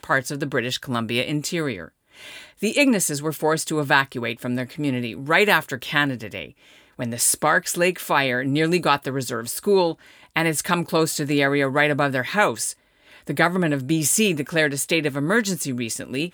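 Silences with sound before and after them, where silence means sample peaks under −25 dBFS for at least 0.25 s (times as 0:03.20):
0:01.84–0:02.63
0:06.44–0:07.00
0:09.92–0:10.36
0:12.71–0:13.29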